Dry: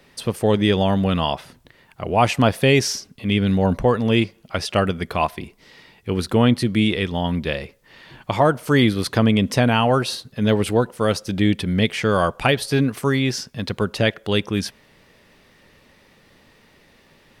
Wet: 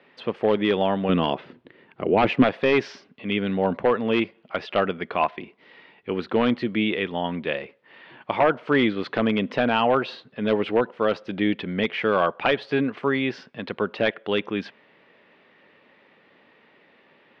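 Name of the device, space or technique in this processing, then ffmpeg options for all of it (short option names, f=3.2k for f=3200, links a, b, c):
synthesiser wavefolder: -filter_complex "[0:a]highpass=260,aeval=exprs='0.335*(abs(mod(val(0)/0.335+3,4)-2)-1)':c=same,lowpass=f=3.1k:w=0.5412,lowpass=f=3.1k:w=1.3066,asettb=1/sr,asplit=3[a][b][c];[a]atrim=end=1.094[d];[b]atrim=start=1.09:end=2.44,asetpts=PTS-STARTPTS,afade=t=in:d=0.004:c=qsin,afade=t=out:st=1.346:d=0.004:c=qsin,lowshelf=f=530:t=q:w=1.5:g=7[e];[c]atrim=start=2.436[f];[d][e]acrossfade=d=0.004:c1=hsin:c2=qsin[g];[g][f]acrossfade=d=0.004:c1=qsin:c2=hsin,volume=-1dB"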